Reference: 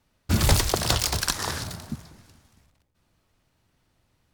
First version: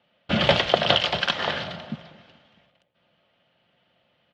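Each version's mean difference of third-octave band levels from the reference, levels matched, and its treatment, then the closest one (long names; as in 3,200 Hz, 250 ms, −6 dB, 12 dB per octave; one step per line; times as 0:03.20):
9.0 dB: loudspeaker in its box 200–3,400 Hz, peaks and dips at 340 Hz −10 dB, 600 Hz +9 dB, 1,000 Hz −5 dB, 3,100 Hz +10 dB
comb filter 5.7 ms, depth 34%
level +4.5 dB
AAC 48 kbit/s 48,000 Hz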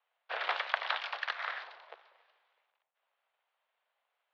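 18.5 dB: sub-harmonics by changed cycles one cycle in 2, inverted
dynamic equaliser 1,500 Hz, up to +5 dB, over −39 dBFS, Q 1.1
single-sideband voice off tune +160 Hz 450–3,400 Hz
level −8 dB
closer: first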